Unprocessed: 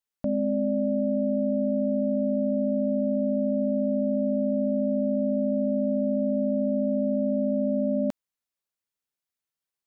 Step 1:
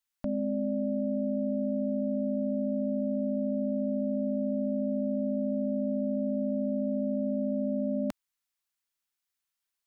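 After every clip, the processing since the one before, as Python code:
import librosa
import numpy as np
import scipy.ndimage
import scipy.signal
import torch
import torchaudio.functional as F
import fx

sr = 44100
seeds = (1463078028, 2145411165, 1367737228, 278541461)

y = fx.graphic_eq(x, sr, hz=(125, 250, 500), db=(-12, -3, -11))
y = y * 10.0 ** (3.5 / 20.0)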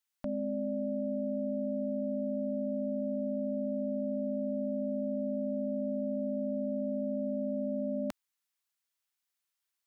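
y = fx.low_shelf(x, sr, hz=370.0, db=-6.5)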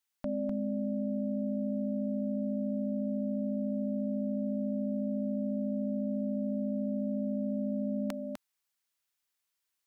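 y = x + 10.0 ** (-5.5 / 20.0) * np.pad(x, (int(251 * sr / 1000.0), 0))[:len(x)]
y = y * 10.0 ** (1.0 / 20.0)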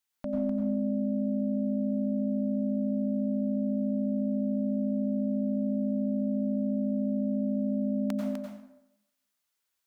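y = fx.rev_plate(x, sr, seeds[0], rt60_s=0.85, hf_ratio=0.65, predelay_ms=80, drr_db=0.0)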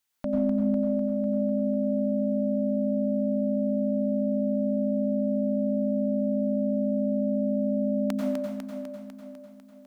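y = fx.echo_feedback(x, sr, ms=499, feedback_pct=43, wet_db=-8.0)
y = y * 10.0 ** (4.5 / 20.0)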